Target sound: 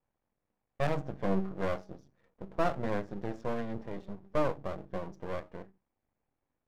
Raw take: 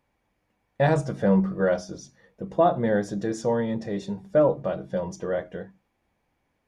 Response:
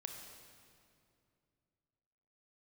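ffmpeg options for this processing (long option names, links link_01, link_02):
-af "adynamicsmooth=sensitivity=4.5:basefreq=1700,aeval=exprs='max(val(0),0)':channel_layout=same,volume=-6dB"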